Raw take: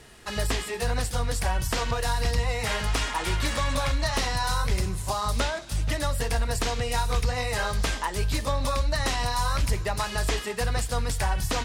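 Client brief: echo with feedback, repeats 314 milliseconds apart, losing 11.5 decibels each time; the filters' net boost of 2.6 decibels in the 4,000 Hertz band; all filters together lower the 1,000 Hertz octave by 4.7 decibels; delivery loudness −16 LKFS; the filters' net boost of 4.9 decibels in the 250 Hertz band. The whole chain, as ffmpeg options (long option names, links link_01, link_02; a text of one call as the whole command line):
ffmpeg -i in.wav -af "equalizer=frequency=250:width_type=o:gain=6.5,equalizer=frequency=1000:width_type=o:gain=-6.5,equalizer=frequency=4000:width_type=o:gain=3.5,aecho=1:1:314|628|942:0.266|0.0718|0.0194,volume=11dB" out.wav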